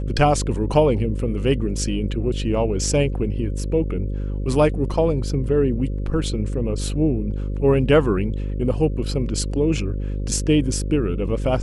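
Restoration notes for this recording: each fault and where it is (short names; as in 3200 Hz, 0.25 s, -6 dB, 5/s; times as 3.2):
buzz 50 Hz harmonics 11 -25 dBFS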